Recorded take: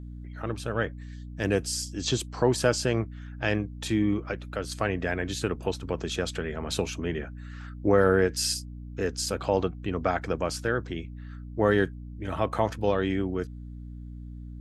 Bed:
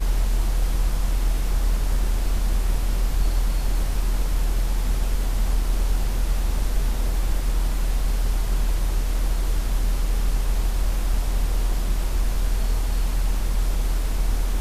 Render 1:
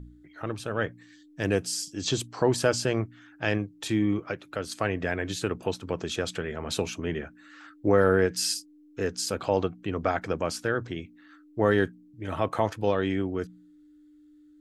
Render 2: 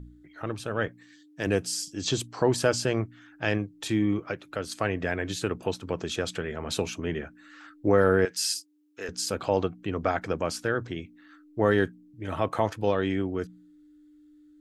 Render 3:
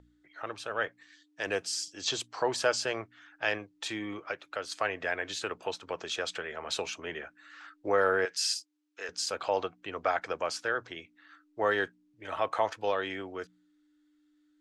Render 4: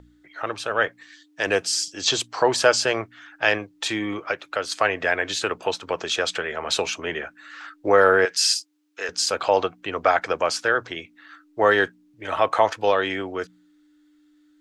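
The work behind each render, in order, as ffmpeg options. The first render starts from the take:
-af "bandreject=f=60:t=h:w=4,bandreject=f=120:t=h:w=4,bandreject=f=180:t=h:w=4,bandreject=f=240:t=h:w=4"
-filter_complex "[0:a]asettb=1/sr,asplit=3[a][b][c];[a]atrim=end=0.884[d];[b]atrim=start=0.88:end=1.47,asetpts=PTS-STARTPTS,afade=t=in:d=0.004:c=qsin,afade=t=out:st=0.586:d=0.004:c=qsin,highpass=f=180:p=1[e];[c]atrim=start=1.466[f];[d][e]acrossfade=d=0.004:c1=hsin:c2=qsin[g];[g][f]acrossfade=d=0.004:c1=qsin:c2=hsin,asettb=1/sr,asplit=3[h][i][j];[h]atrim=end=8.254[k];[i]atrim=start=8.25:end=9.09,asetpts=PTS-STARTPTS,afade=t=in:d=0.004:c=qsin,afade=t=out:st=0.836:d=0.004:c=qsin,highpass=f=1.1k:p=1[l];[j]atrim=start=9.086[m];[k][l]acrossfade=d=0.004:c1=hsin:c2=qsin[n];[n][m]acrossfade=d=0.004:c1=qsin:c2=hsin"
-filter_complex "[0:a]acrossover=split=490 7900:gain=0.112 1 0.158[a][b][c];[a][b][c]amix=inputs=3:normalize=0"
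-af "volume=10dB"

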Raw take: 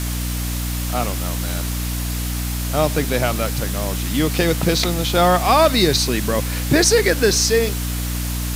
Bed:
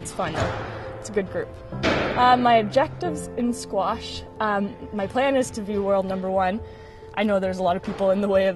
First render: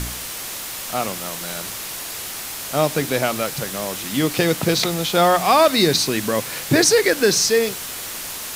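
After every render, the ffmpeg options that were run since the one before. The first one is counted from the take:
-af "bandreject=f=60:t=h:w=4,bandreject=f=120:t=h:w=4,bandreject=f=180:t=h:w=4,bandreject=f=240:t=h:w=4,bandreject=f=300:t=h:w=4"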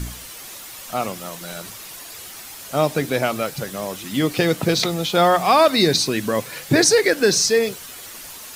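-af "afftdn=nr=9:nf=-31"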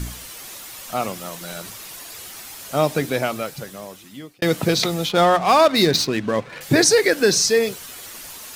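-filter_complex "[0:a]asettb=1/sr,asplit=3[a][b][c];[a]atrim=end=5.094[d];[b]atrim=start=5.09:end=6.61,asetpts=PTS-STARTPTS,afade=t=in:d=0.004:c=qsin,afade=t=out:st=1.516:d=0.004:c=qsin,adynamicsmooth=sensitivity=3.5:basefreq=1.7k[e];[c]atrim=start=6.606[f];[d][e]acrossfade=d=0.004:c1=hsin:c2=qsin[g];[g][f]acrossfade=d=0.004:c1=qsin:c2=hsin,asplit=2[h][i];[h]atrim=end=4.42,asetpts=PTS-STARTPTS,afade=t=out:st=2.98:d=1.44[j];[i]atrim=start=4.42,asetpts=PTS-STARTPTS,afade=t=in:d=0.004:c=hsin[k];[j][k]concat=n=2:v=0:a=1"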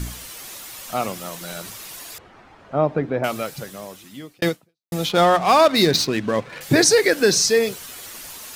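-filter_complex "[0:a]asettb=1/sr,asplit=3[a][b][c];[a]atrim=end=2.184[d];[b]atrim=start=2.18:end=3.24,asetpts=PTS-STARTPTS,afade=t=in:d=0.004:c=qsin,afade=t=out:st=1.056:d=0.004:c=qsin,lowpass=1.3k[e];[c]atrim=start=3.236[f];[d][e]acrossfade=d=0.004:c1=hsin:c2=qsin[g];[g][f]acrossfade=d=0.004:c1=qsin:c2=hsin,asplit=2[h][i];[h]atrim=end=4.92,asetpts=PTS-STARTPTS,afade=t=out:st=4.48:d=0.44:c=exp[j];[i]atrim=start=4.92,asetpts=PTS-STARTPTS,afade=t=in:d=0.004:c=hsin[k];[j][k]concat=n=2:v=0:a=1"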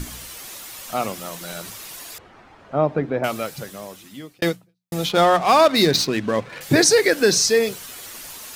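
-af "bandreject=f=60:t=h:w=6,bandreject=f=120:t=h:w=6,bandreject=f=180:t=h:w=6"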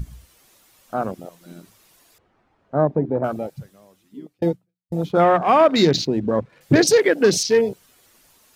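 -af "afwtdn=0.0631,tiltshelf=f=770:g=3"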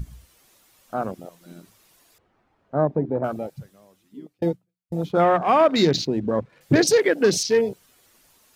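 -af "volume=-2.5dB"

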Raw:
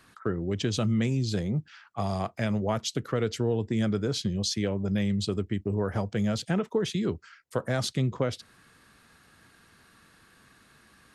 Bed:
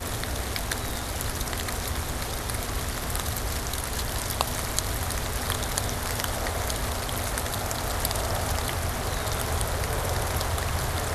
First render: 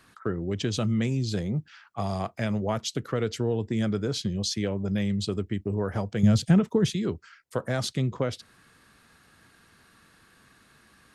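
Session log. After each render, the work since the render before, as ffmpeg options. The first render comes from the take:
-filter_complex "[0:a]asettb=1/sr,asplit=3[a][b][c];[a]atrim=end=6.234[d];[b]atrim=start=6.23:end=6.94,asetpts=PTS-STARTPTS,afade=t=in:d=0.004:c=qsin,afade=t=out:st=0.706:d=0.004:c=qsin,bass=f=250:g=12,treble=f=4k:g=4[e];[c]atrim=start=6.936[f];[d][e]acrossfade=d=0.004:c1=hsin:c2=qsin[g];[g][f]acrossfade=d=0.004:c1=qsin:c2=hsin"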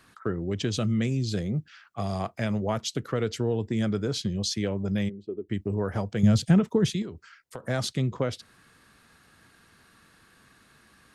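-filter_complex "[0:a]asettb=1/sr,asplit=3[a][b][c];[a]atrim=end=0.734[d];[b]atrim=start=0.73:end=2.14,asetpts=PTS-STARTPTS,afade=t=in:d=0.004:c=qsin,afade=t=out:st=1.406:d=0.004:c=qsin,equalizer=f=910:t=o:w=0.35:g=-8[e];[c]atrim=start=2.136[f];[d][e]acrossfade=d=0.004:c1=hsin:c2=qsin[g];[g][f]acrossfade=d=0.004:c1=qsin:c2=hsin,asplit=3[h][i][j];[h]afade=t=out:st=5.08:d=0.02[k];[i]bandpass=f=370:t=q:w=3.4,afade=t=in:st=5.08:d=0.02,afade=t=out:st=5.48:d=0.02[l];[j]afade=t=in:st=5.48:d=0.02[m];[k][l][m]amix=inputs=3:normalize=0,asettb=1/sr,asplit=3[n][o][p];[n]atrim=end=7.024[q];[o]atrim=start=7.02:end=7.64,asetpts=PTS-STARTPTS,afade=t=in:d=0.004:c=qsin,afade=t=out:st=0.616:d=0.004:c=qsin,acompressor=threshold=-33dB:ratio=10:attack=3.2:release=140:knee=1:detection=peak[r];[p]atrim=start=7.636[s];[q][r]acrossfade=d=0.004:c1=hsin:c2=qsin[t];[t][s]acrossfade=d=0.004:c1=qsin:c2=hsin"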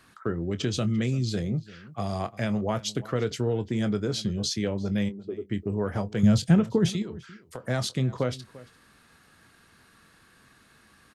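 -filter_complex "[0:a]asplit=2[a][b];[b]adelay=24,volume=-13dB[c];[a][c]amix=inputs=2:normalize=0,asplit=2[d][e];[e]adelay=344,volume=-19dB,highshelf=f=4k:g=-7.74[f];[d][f]amix=inputs=2:normalize=0"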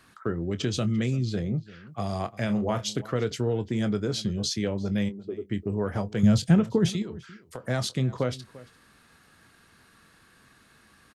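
-filter_complex "[0:a]asettb=1/sr,asplit=3[a][b][c];[a]atrim=end=1.164[d];[b]atrim=start=1.16:end=1.87,asetpts=PTS-STARTPTS,afade=t=in:d=0.004:c=qsin,afade=t=out:st=0.706:d=0.004:c=qsin,lowpass=f=3k:p=1[e];[c]atrim=start=1.866[f];[d][e]acrossfade=d=0.004:c1=hsin:c2=qsin[g];[g][f]acrossfade=d=0.004:c1=qsin:c2=hsin,asplit=3[h][i][j];[h]afade=t=out:st=2.47:d=0.02[k];[i]asplit=2[l][m];[m]adelay=34,volume=-9dB[n];[l][n]amix=inputs=2:normalize=0,afade=t=in:st=2.47:d=0.02,afade=t=out:st=3:d=0.02[o];[j]afade=t=in:st=3:d=0.02[p];[k][o][p]amix=inputs=3:normalize=0"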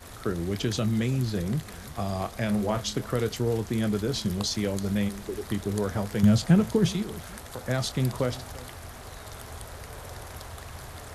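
-filter_complex "[1:a]volume=-13.5dB[a];[0:a][a]amix=inputs=2:normalize=0"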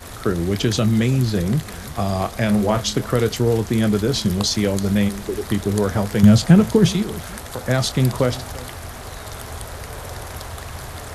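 -af "volume=8.5dB,alimiter=limit=-1dB:level=0:latency=1"

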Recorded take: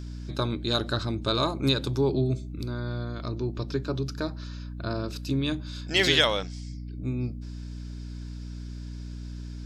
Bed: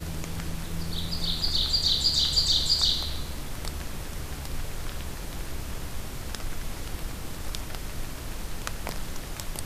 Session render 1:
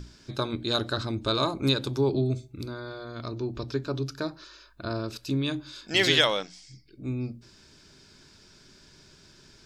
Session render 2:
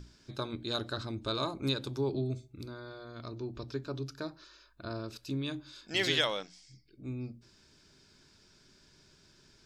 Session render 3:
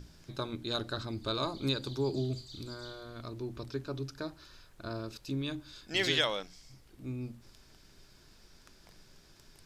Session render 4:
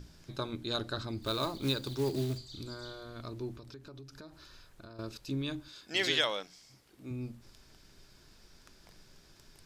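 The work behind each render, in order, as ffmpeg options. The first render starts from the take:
-af "bandreject=f=60:t=h:w=6,bandreject=f=120:t=h:w=6,bandreject=f=180:t=h:w=6,bandreject=f=240:t=h:w=6,bandreject=f=300:t=h:w=6"
-af "volume=-7.5dB"
-filter_complex "[1:a]volume=-27dB[a];[0:a][a]amix=inputs=2:normalize=0"
-filter_complex "[0:a]asettb=1/sr,asplit=3[a][b][c];[a]atrim=end=1.224[d];[b]atrim=start=1.22:end=2.38,asetpts=PTS-STARTPTS,afade=t=in:d=0.004:c=qsin,afade=t=out:st=1.156:d=0.004:c=qsin,acrusher=bits=4:mode=log:mix=0:aa=0.000001[e];[c]atrim=start=2.376[f];[d][e]acrossfade=d=0.004:c1=hsin:c2=qsin[g];[g][f]acrossfade=d=0.004:c1=qsin:c2=hsin,asettb=1/sr,asplit=3[h][i][j];[h]atrim=end=3.564[k];[i]atrim=start=3.56:end=4.99,asetpts=PTS-STARTPTS,afade=t=in:d=0.004:c=qsin,afade=t=out:st=1.426:d=0.004:c=qsin,acompressor=threshold=-46dB:ratio=6:attack=3.2:release=140:knee=1:detection=peak[l];[j]atrim=start=4.986[m];[k][l]acrossfade=d=0.004:c1=hsin:c2=qsin[n];[n][m]acrossfade=d=0.004:c1=qsin:c2=hsin,asettb=1/sr,asplit=3[o][p][q];[o]atrim=end=5.684[r];[p]atrim=start=5.68:end=7.11,asetpts=PTS-STARTPTS,afade=t=in:d=0.004:c=qsin,afade=t=out:st=1.426:d=0.004:c=qsin,highpass=f=250:p=1[s];[q]atrim=start=7.106[t];[r][s]acrossfade=d=0.004:c1=hsin:c2=qsin[u];[u][t]acrossfade=d=0.004:c1=qsin:c2=hsin"

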